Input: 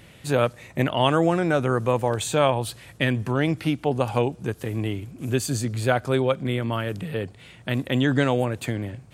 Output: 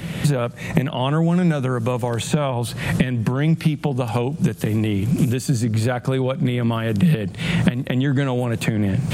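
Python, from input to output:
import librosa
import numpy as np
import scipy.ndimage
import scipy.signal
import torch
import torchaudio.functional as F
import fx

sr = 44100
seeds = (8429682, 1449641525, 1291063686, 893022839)

y = fx.recorder_agc(x, sr, target_db=-12.0, rise_db_per_s=62.0, max_gain_db=30)
y = fx.peak_eq(y, sr, hz=170.0, db=13.5, octaves=0.58)
y = fx.band_squash(y, sr, depth_pct=70)
y = F.gain(torch.from_numpy(y), -4.0).numpy()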